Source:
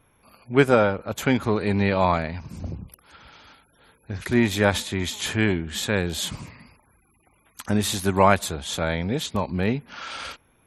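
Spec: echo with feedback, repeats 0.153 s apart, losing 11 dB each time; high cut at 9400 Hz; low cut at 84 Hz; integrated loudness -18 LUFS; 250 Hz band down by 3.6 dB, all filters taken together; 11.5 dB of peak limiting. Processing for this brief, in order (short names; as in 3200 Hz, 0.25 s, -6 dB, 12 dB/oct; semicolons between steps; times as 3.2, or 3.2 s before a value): HPF 84 Hz; LPF 9400 Hz; bell 250 Hz -4.5 dB; limiter -14 dBFS; feedback echo 0.153 s, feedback 28%, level -11 dB; gain +10 dB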